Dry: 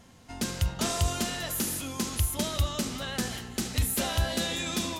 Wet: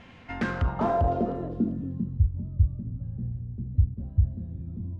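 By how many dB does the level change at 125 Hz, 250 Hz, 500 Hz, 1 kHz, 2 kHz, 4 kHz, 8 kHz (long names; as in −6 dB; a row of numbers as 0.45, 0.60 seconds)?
+5.5 dB, +2.0 dB, +3.5 dB, +3.5 dB, can't be measured, below −20 dB, below −30 dB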